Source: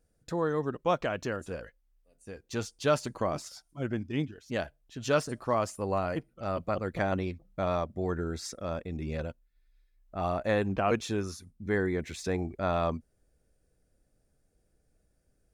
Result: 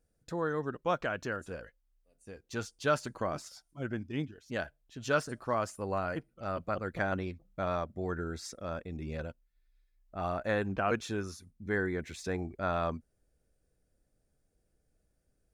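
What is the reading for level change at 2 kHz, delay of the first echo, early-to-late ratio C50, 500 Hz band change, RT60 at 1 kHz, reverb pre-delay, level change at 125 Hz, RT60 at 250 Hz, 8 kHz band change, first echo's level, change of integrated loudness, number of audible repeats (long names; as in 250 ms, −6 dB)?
+1.0 dB, no echo audible, no reverb audible, −4.0 dB, no reverb audible, no reverb audible, −4.0 dB, no reverb audible, −4.0 dB, no echo audible, −3.0 dB, no echo audible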